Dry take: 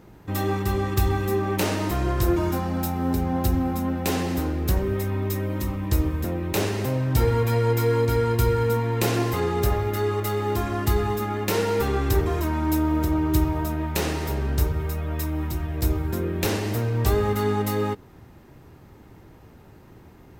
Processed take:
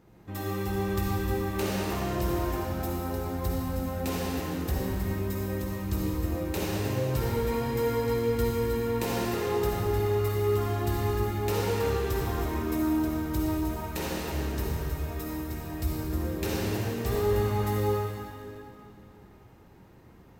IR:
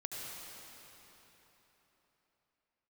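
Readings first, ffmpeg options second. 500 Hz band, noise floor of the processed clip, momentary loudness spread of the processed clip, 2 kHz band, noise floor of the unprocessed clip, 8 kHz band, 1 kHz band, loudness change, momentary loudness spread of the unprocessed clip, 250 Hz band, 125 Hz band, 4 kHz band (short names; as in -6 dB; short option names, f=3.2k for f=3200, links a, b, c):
-3.5 dB, -53 dBFS, 6 LU, -5.0 dB, -49 dBFS, -5.5 dB, -5.5 dB, -5.0 dB, 5 LU, -5.0 dB, -6.5 dB, -5.0 dB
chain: -filter_complex "[1:a]atrim=start_sample=2205,asetrate=61740,aresample=44100[a];[0:a][a]afir=irnorm=-1:irlink=0,volume=-2.5dB"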